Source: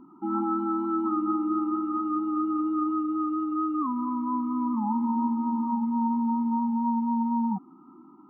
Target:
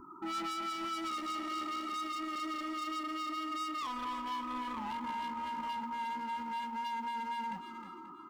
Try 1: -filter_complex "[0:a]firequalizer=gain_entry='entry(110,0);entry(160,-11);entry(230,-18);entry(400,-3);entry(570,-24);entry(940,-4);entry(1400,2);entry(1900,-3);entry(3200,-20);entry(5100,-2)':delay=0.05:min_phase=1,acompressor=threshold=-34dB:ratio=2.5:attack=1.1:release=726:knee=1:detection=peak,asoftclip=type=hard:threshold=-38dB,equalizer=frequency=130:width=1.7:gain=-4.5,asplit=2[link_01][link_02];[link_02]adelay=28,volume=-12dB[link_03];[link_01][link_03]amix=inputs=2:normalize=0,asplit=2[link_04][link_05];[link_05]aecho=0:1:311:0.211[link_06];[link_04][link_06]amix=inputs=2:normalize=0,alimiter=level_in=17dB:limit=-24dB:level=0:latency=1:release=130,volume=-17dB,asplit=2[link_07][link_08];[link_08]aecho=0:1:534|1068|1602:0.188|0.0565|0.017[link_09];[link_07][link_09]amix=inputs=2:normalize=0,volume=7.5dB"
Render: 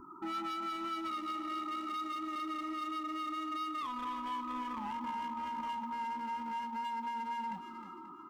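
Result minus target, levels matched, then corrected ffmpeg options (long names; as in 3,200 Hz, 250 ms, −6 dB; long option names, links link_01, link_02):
downward compressor: peak gain reduction +7 dB
-filter_complex "[0:a]firequalizer=gain_entry='entry(110,0);entry(160,-11);entry(230,-18);entry(400,-3);entry(570,-24);entry(940,-4);entry(1400,2);entry(1900,-3);entry(3200,-20);entry(5100,-2)':delay=0.05:min_phase=1,asoftclip=type=hard:threshold=-38dB,equalizer=frequency=130:width=1.7:gain=-4.5,asplit=2[link_01][link_02];[link_02]adelay=28,volume=-12dB[link_03];[link_01][link_03]amix=inputs=2:normalize=0,asplit=2[link_04][link_05];[link_05]aecho=0:1:311:0.211[link_06];[link_04][link_06]amix=inputs=2:normalize=0,alimiter=level_in=17dB:limit=-24dB:level=0:latency=1:release=130,volume=-17dB,asplit=2[link_07][link_08];[link_08]aecho=0:1:534|1068|1602:0.188|0.0565|0.017[link_09];[link_07][link_09]amix=inputs=2:normalize=0,volume=7.5dB"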